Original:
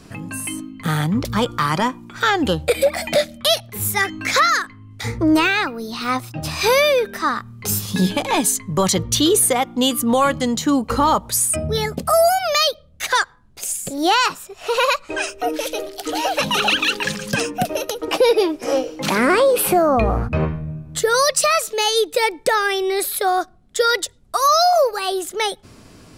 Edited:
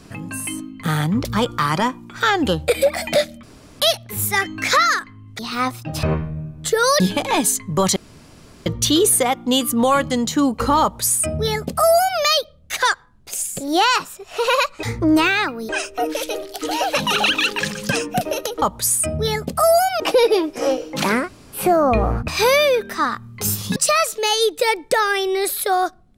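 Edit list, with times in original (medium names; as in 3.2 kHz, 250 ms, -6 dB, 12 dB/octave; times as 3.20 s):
3.43 s: insert room tone 0.37 s
5.02–5.88 s: move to 15.13 s
6.52–8.00 s: swap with 20.34–21.31 s
8.96 s: insert room tone 0.70 s
11.12–12.50 s: copy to 18.06 s
19.27–19.66 s: room tone, crossfade 0.16 s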